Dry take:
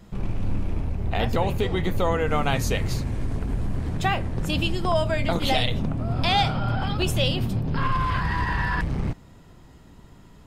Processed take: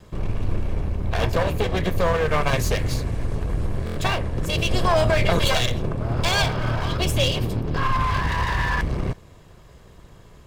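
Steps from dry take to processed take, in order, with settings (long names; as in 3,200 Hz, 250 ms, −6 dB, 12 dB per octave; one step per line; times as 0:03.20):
lower of the sound and its delayed copy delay 1.8 ms
buffer that repeats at 0:03.85, samples 1,024, times 4
0:04.71–0:05.48: envelope flattener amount 70%
level +3 dB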